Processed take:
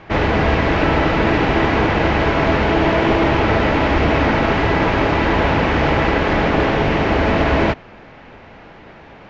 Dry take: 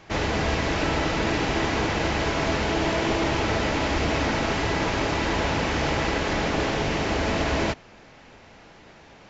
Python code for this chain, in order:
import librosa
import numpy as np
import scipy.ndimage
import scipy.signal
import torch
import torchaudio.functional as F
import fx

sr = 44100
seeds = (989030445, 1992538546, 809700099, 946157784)

y = scipy.signal.sosfilt(scipy.signal.butter(2, 2600.0, 'lowpass', fs=sr, output='sos'), x)
y = F.gain(torch.from_numpy(y), 9.0).numpy()